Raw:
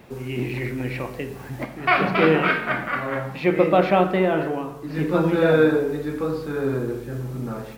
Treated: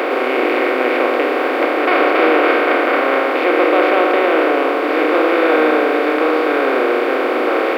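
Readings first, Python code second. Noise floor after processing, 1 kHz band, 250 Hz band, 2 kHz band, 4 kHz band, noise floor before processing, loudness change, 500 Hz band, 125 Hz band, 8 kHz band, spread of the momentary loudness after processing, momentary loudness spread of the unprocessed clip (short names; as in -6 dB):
-18 dBFS, +9.5 dB, +5.0 dB, +9.0 dB, +9.0 dB, -37 dBFS, +7.5 dB, +8.5 dB, under -30 dB, n/a, 4 LU, 13 LU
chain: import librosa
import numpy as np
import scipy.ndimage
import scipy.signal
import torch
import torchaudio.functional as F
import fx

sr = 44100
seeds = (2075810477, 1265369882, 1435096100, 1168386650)

y = fx.bin_compress(x, sr, power=0.2)
y = scipy.signal.sosfilt(scipy.signal.cheby1(8, 1.0, 250.0, 'highpass', fs=sr, output='sos'), y)
y = y * librosa.db_to_amplitude(-2.0)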